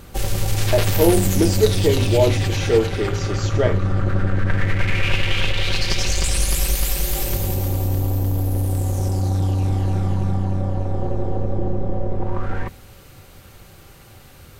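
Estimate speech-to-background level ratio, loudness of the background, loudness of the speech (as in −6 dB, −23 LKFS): 0.5 dB, −22.0 LKFS, −21.5 LKFS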